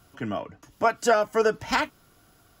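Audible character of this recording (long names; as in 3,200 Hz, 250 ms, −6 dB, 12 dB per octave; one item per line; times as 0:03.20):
background noise floor −60 dBFS
spectral slope −3.5 dB per octave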